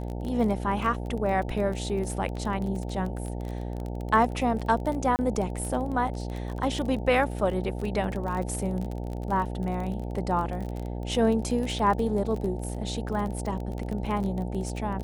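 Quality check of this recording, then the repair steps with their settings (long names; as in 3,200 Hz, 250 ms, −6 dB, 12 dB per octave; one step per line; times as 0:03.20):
mains buzz 60 Hz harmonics 15 −33 dBFS
surface crackle 25 per second −31 dBFS
0:05.16–0:05.19: drop-out 29 ms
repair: click removal
hum removal 60 Hz, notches 15
repair the gap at 0:05.16, 29 ms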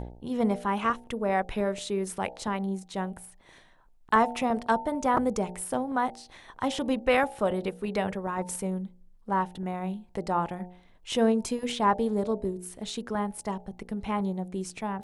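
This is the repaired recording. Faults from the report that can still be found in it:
none of them is left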